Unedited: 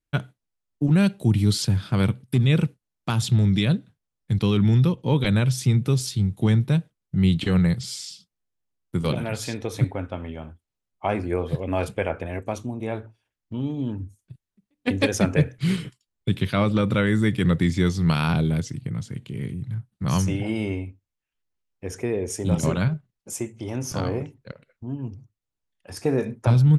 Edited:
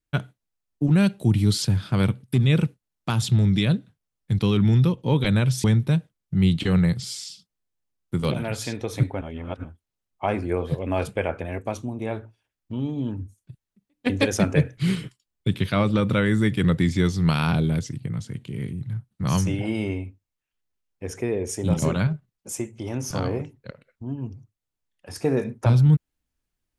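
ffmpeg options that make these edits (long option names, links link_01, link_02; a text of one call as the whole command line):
ffmpeg -i in.wav -filter_complex "[0:a]asplit=4[link_01][link_02][link_03][link_04];[link_01]atrim=end=5.642[link_05];[link_02]atrim=start=6.448:end=10.022[link_06];[link_03]atrim=start=10.018:end=10.452,asetpts=PTS-STARTPTS,areverse[link_07];[link_04]atrim=start=10.448[link_08];[link_05][link_06]acrossfade=duration=0.004:curve1=hsin:curve2=hsin[link_09];[link_09][link_07]acrossfade=duration=0.004:curve1=hsin:curve2=hsin[link_10];[link_10][link_08]acrossfade=duration=0.004:curve1=hsin:curve2=hsin" out.wav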